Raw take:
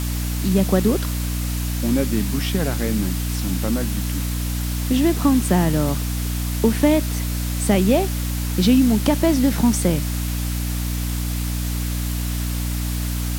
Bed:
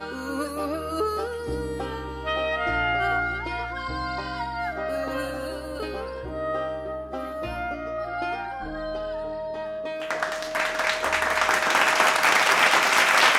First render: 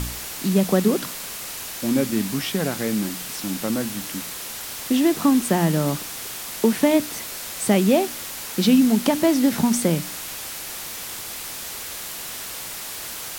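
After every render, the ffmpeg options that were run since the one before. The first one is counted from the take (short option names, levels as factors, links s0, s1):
-af "bandreject=f=60:t=h:w=4,bandreject=f=120:t=h:w=4,bandreject=f=180:t=h:w=4,bandreject=f=240:t=h:w=4,bandreject=f=300:t=h:w=4"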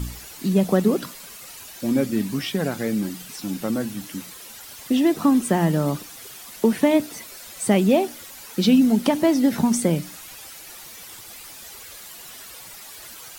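-af "afftdn=nr=11:nf=-34"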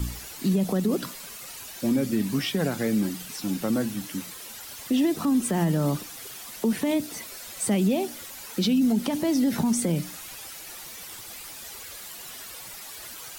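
-filter_complex "[0:a]acrossover=split=280|3000[s0][s1][s2];[s1]acompressor=threshold=0.0631:ratio=6[s3];[s0][s3][s2]amix=inputs=3:normalize=0,alimiter=limit=0.168:level=0:latency=1:release=64"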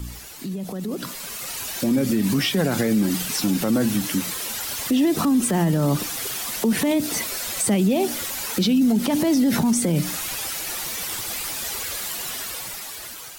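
-af "alimiter=limit=0.0631:level=0:latency=1:release=84,dynaudnorm=f=380:g=7:m=3.76"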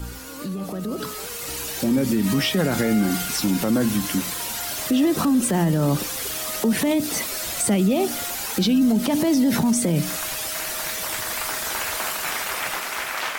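-filter_complex "[1:a]volume=0.316[s0];[0:a][s0]amix=inputs=2:normalize=0"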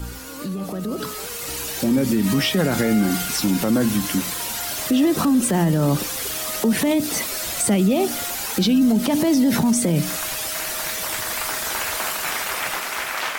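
-af "volume=1.19"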